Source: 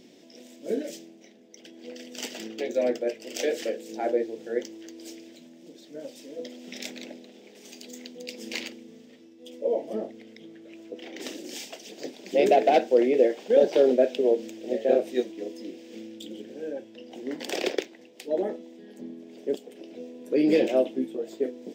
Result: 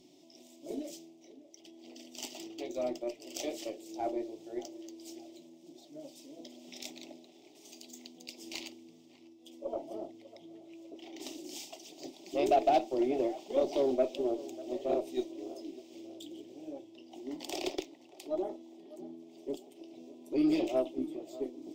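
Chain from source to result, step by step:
phaser with its sweep stopped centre 320 Hz, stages 8
harmonic generator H 6 −30 dB, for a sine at −11 dBFS
tape delay 596 ms, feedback 53%, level −16 dB, low-pass 1,200 Hz
level −4.5 dB

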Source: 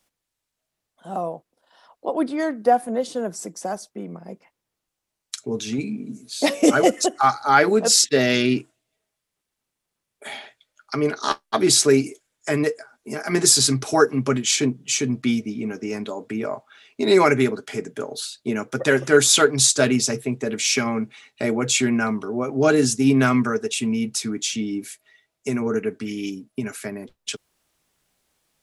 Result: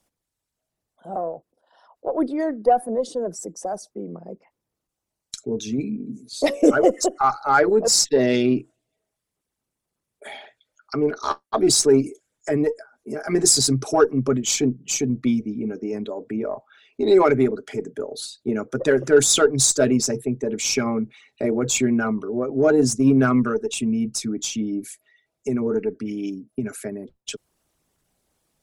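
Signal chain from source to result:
spectral envelope exaggerated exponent 1.5
harmonic generator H 8 −34 dB, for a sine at −2 dBFS
parametric band 2,600 Hz −5.5 dB 2.4 octaves
level +1 dB

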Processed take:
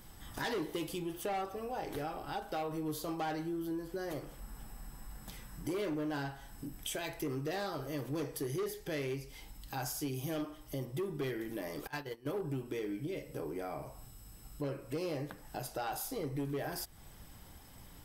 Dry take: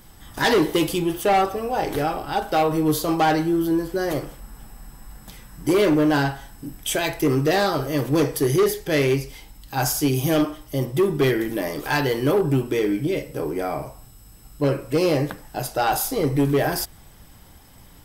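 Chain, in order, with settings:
0:11.87–0:12.36: noise gate −19 dBFS, range −24 dB
downward compressor 2.5 to 1, threshold −35 dBFS, peak gain reduction 13 dB
level −6 dB

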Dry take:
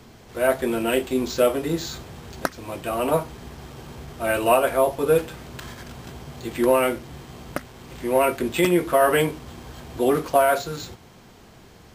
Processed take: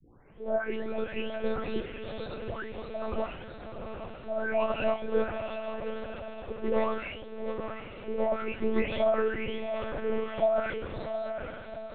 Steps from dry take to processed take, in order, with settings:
every frequency bin delayed by itself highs late, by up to 828 ms
feedback delay with all-pass diffusion 772 ms, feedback 48%, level −7 dB
one-pitch LPC vocoder at 8 kHz 220 Hz
level −7 dB

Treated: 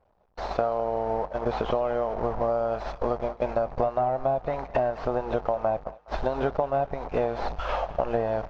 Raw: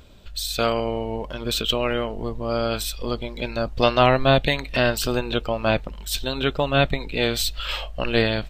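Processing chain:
linear delta modulator 32 kbit/s, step −28 dBFS
noise gate −29 dBFS, range −36 dB
drawn EQ curve 310 Hz 0 dB, 730 Hz +15 dB, 3,400 Hz −16 dB
downward compressor 12 to 1, threshold −22 dBFS, peak gain reduction 19 dB
on a send: feedback echo with a high-pass in the loop 208 ms, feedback 52%, high-pass 550 Hz, level −18 dB

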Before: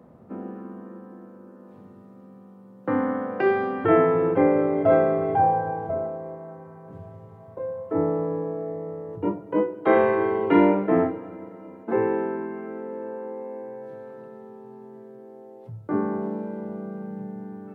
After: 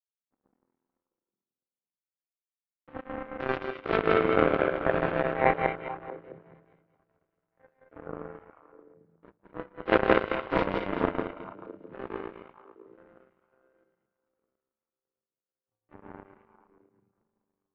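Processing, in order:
feedback delay that plays each chunk backwards 109 ms, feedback 79%, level 0 dB
parametric band 520 Hz +3.5 dB 0.37 octaves
feedback echo with a high-pass in the loop 1,066 ms, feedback 57%, high-pass 190 Hz, level −17 dB
power curve on the samples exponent 3
on a send: echo through a band-pass that steps 219 ms, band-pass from 2,700 Hz, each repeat −1.4 octaves, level −8 dB
on the sum: level −1 dB

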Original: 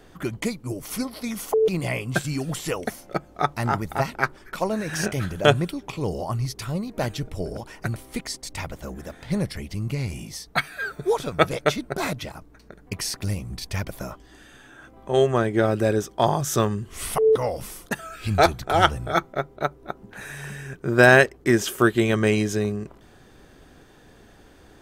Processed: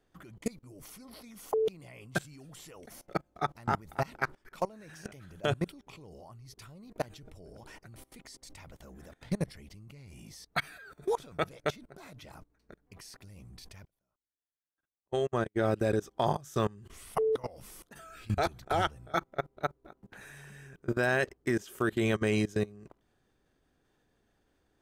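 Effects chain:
output level in coarse steps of 23 dB
0:13.85–0:15.57: expander for the loud parts 2.5 to 1, over −46 dBFS
level −4 dB

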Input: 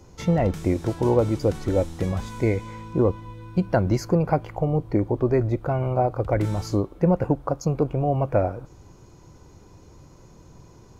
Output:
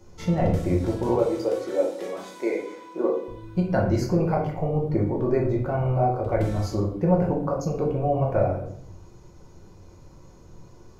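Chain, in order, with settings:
0:01.09–0:03.28: high-pass filter 310 Hz 24 dB per octave
convolution reverb RT60 0.60 s, pre-delay 5 ms, DRR −2 dB
level −5.5 dB

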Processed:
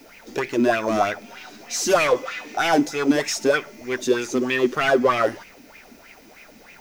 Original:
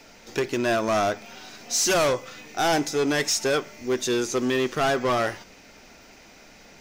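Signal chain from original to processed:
0:02.07–0:02.57: mid-hump overdrive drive 13 dB, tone 4,600 Hz, clips at −18.5 dBFS
background noise violet −56 dBFS
auto-filter bell 3.2 Hz 240–2,500 Hz +15 dB
level −3 dB

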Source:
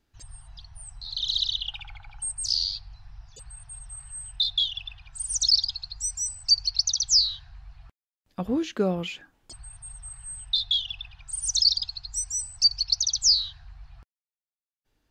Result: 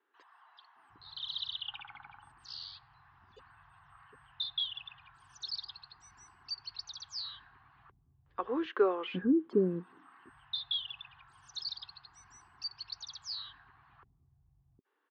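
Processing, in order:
loudspeaker in its box 240–2,700 Hz, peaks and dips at 270 Hz +4 dB, 390 Hz +8 dB, 640 Hz −10 dB, 1,100 Hz +8 dB, 1,600 Hz +3 dB, 2,400 Hz −7 dB
multiband delay without the direct sound highs, lows 760 ms, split 390 Hz

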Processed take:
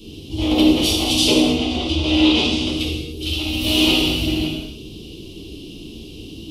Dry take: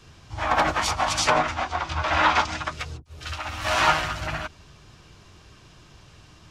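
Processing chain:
drawn EQ curve 150 Hz 0 dB, 270 Hz +13 dB, 400 Hz +9 dB, 730 Hz −11 dB, 1,700 Hz −26 dB, 2,900 Hz +9 dB, 7,000 Hz −7 dB, 11,000 Hz +9 dB
convolution reverb, pre-delay 3 ms, DRR −3.5 dB
in parallel at +0.5 dB: downward compressor, threshold −25 dBFS, peak gain reduction 13 dB
on the sum: parametric band 1,600 Hz −4.5 dB 1.5 octaves

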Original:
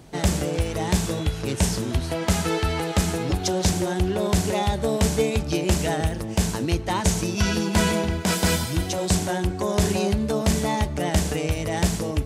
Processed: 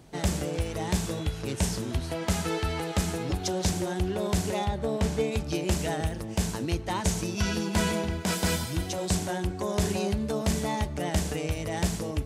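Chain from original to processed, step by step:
0:04.64–0:05.31: high-shelf EQ 3,500 Hz → 7,000 Hz −10.5 dB
level −5.5 dB

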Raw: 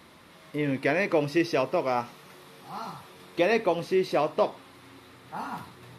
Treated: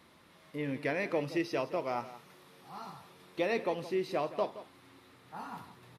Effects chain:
single-tap delay 171 ms −15 dB
level −8 dB

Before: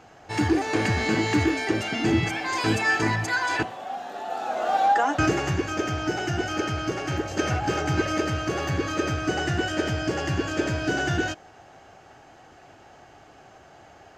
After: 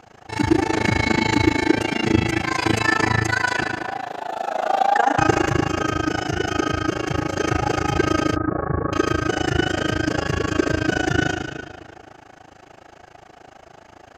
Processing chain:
on a send at −2 dB: convolution reverb RT60 2.1 s, pre-delay 60 ms
on the sum: amplitude modulation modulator 27 Hz, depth 90%
0:08.36–0:08.93: inverse Chebyshev low-pass filter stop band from 2,900 Hz, stop band 40 dB
level +6 dB

